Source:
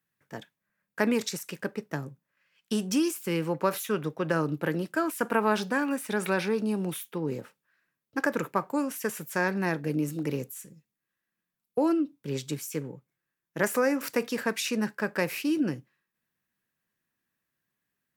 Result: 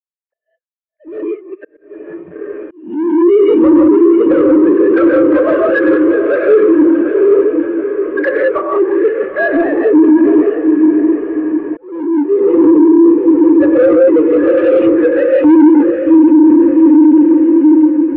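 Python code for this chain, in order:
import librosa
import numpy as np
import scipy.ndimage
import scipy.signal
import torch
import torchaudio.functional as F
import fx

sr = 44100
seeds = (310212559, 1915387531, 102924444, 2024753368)

p1 = fx.sine_speech(x, sr)
p2 = fx.peak_eq(p1, sr, hz=220.0, db=10.0, octaves=1.9)
p3 = p2 + fx.echo_diffused(p2, sr, ms=760, feedback_pct=61, wet_db=-6.5, dry=0)
p4 = fx.dynamic_eq(p3, sr, hz=640.0, q=6.1, threshold_db=-42.0, ratio=4.0, max_db=4)
p5 = fx.leveller(p4, sr, passes=3)
p6 = scipy.signal.sosfilt(scipy.signal.butter(4, 2800.0, 'lowpass', fs=sr, output='sos'), p5)
p7 = fx.rev_gated(p6, sr, seeds[0], gate_ms=210, shape='rising', drr_db=-1.5)
p8 = fx.over_compress(p7, sr, threshold_db=-9.0, ratio=-0.5)
p9 = p7 + F.gain(torch.from_numpy(p8), 2.5).numpy()
p10 = 10.0 ** (-3.5 / 20.0) * np.tanh(p9 / 10.0 ** (-3.5 / 20.0))
p11 = fx.auto_swell(p10, sr, attack_ms=637.0)
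p12 = fx.spectral_expand(p11, sr, expansion=1.5)
y = F.gain(torch.from_numpy(p12), 2.5).numpy()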